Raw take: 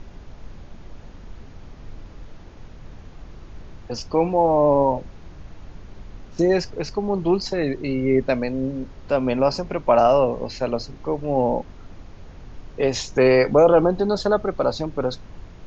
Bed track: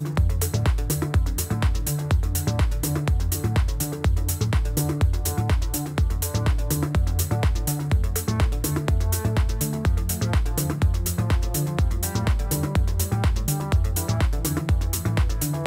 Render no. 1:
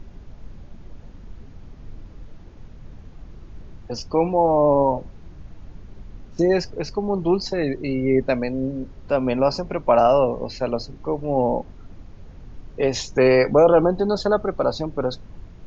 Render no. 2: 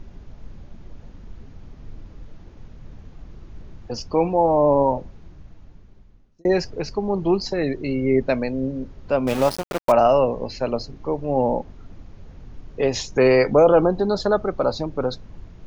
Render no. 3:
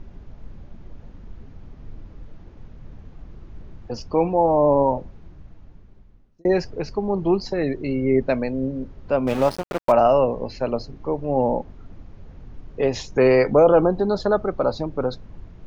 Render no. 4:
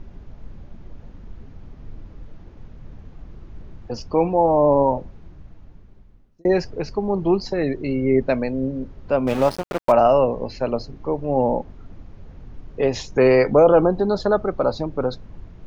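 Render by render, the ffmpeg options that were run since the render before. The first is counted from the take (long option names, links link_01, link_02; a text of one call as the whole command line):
ffmpeg -i in.wav -af "afftdn=noise_reduction=6:noise_floor=-42" out.wav
ffmpeg -i in.wav -filter_complex "[0:a]asettb=1/sr,asplit=3[link_01][link_02][link_03];[link_01]atrim=end=9.274[link_04];[link_02]atrim=start=9.27:end=9.92,asetpts=PTS-STARTPTS,afade=type=in:duration=0.004:curve=qsin,afade=type=out:start_time=0.646:duration=0.004:curve=qsin,aeval=exprs='val(0)*gte(abs(val(0)),0.0596)':channel_layout=same[link_05];[link_03]atrim=start=9.916[link_06];[link_04][link_05]acrossfade=duration=0.004:curve1=hsin:curve2=qsin[link_07];[link_07][link_06]acrossfade=duration=0.004:curve1=qsin:curve2=hsin,asplit=2[link_08][link_09];[link_08]atrim=end=6.45,asetpts=PTS-STARTPTS,afade=type=out:start_time=4.94:duration=1.51[link_10];[link_09]atrim=start=6.45,asetpts=PTS-STARTPTS,afade=type=in:duration=0.004:curve=hsin[link_11];[link_10][link_11]concat=n=2:v=0:a=1" out.wav
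ffmpeg -i in.wav -af "highshelf=frequency=4100:gain=-9" out.wav
ffmpeg -i in.wav -af "volume=1dB" out.wav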